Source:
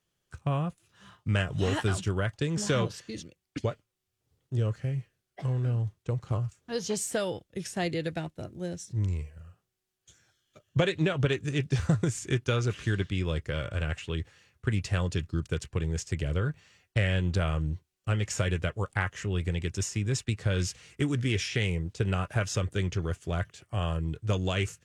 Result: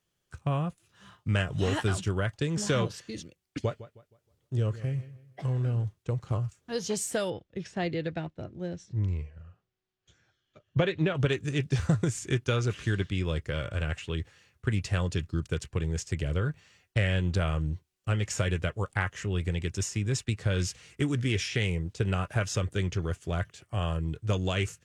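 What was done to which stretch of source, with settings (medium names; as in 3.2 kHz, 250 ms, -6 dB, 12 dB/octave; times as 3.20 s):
3.62–5.85 s: filtered feedback delay 157 ms, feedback 35%, low-pass 4.6 kHz, level -16 dB
7.30–11.15 s: distance through air 150 m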